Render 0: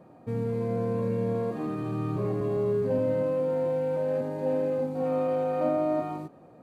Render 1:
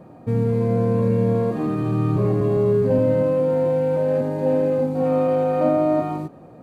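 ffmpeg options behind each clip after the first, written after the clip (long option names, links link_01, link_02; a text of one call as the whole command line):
ffmpeg -i in.wav -af "lowshelf=frequency=210:gain=6,volume=6.5dB" out.wav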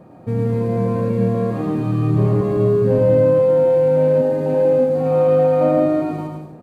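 ffmpeg -i in.wav -af "aecho=1:1:110|187|240.9|278.6|305:0.631|0.398|0.251|0.158|0.1" out.wav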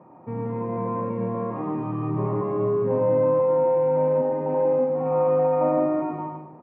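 ffmpeg -i in.wav -af "highpass=190,equalizer=frequency=200:width_type=q:width=4:gain=-5,equalizer=frequency=280:width_type=q:width=4:gain=-3,equalizer=frequency=460:width_type=q:width=4:gain=-5,equalizer=frequency=670:width_type=q:width=4:gain=-4,equalizer=frequency=960:width_type=q:width=4:gain=10,equalizer=frequency=1600:width_type=q:width=4:gain=-8,lowpass=frequency=2100:width=0.5412,lowpass=frequency=2100:width=1.3066,volume=-3dB" out.wav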